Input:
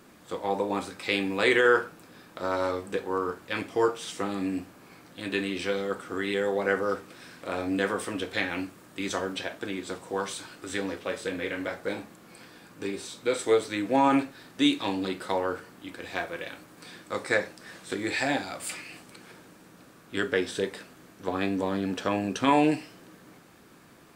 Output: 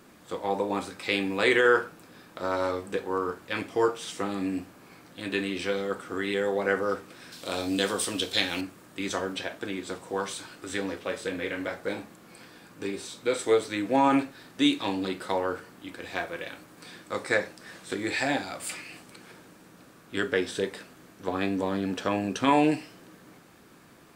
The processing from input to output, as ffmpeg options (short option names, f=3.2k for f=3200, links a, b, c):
-filter_complex "[0:a]asettb=1/sr,asplit=3[a][b][c];[a]atrim=end=7.324[d];[b]atrim=start=7.32:end=8.61,asetpts=PTS-STARTPTS,afade=t=in:d=0.004:c=qsin,afade=t=out:st=1.286:d=0.004:c=qsin,highshelf=f=2.7k:t=q:w=1.5:g=9.5[e];[c]atrim=start=8.606[f];[d][e]acrossfade=d=0.004:c1=hsin:c2=qsin[g];[g][f]acrossfade=d=0.004:c1=qsin:c2=hsin"